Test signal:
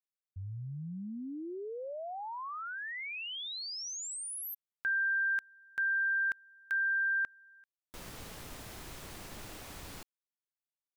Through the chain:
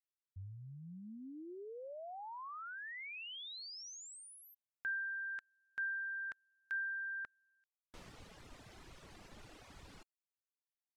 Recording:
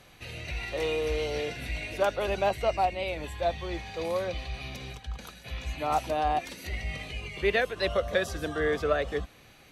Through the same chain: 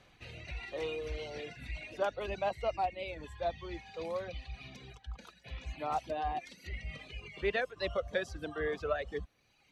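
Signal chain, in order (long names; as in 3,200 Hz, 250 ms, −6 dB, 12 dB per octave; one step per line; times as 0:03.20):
reverb reduction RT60 1.3 s
high-frequency loss of the air 62 metres
level −6 dB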